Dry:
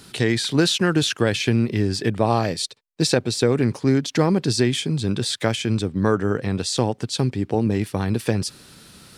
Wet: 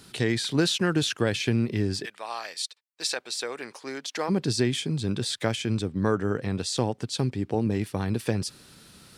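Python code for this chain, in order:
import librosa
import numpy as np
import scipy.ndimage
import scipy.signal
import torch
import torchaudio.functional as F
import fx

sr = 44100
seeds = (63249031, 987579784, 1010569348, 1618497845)

y = fx.highpass(x, sr, hz=fx.line((2.04, 1400.0), (4.28, 570.0)), slope=12, at=(2.04, 4.28), fade=0.02)
y = F.gain(torch.from_numpy(y), -5.0).numpy()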